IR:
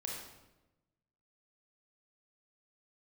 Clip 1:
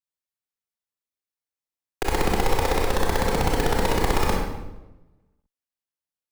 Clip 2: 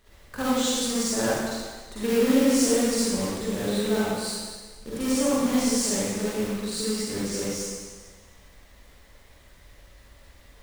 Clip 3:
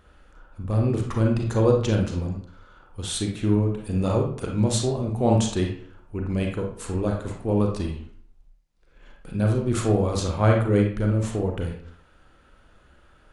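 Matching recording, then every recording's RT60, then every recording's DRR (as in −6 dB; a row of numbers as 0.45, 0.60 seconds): 1; 1.0, 1.5, 0.60 seconds; −2.0, −10.0, 0.5 decibels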